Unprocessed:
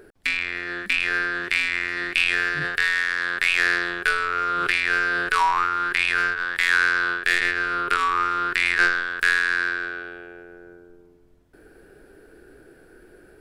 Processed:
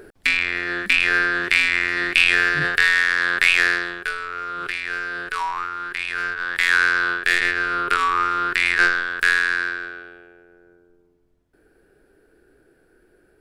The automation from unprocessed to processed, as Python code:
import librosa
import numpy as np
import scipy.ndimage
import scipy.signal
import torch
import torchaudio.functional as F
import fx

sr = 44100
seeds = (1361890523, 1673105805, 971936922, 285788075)

y = fx.gain(x, sr, db=fx.line((3.49, 5.0), (4.12, -5.5), (6.09, -5.5), (6.55, 2.0), (9.43, 2.0), (10.38, -8.0)))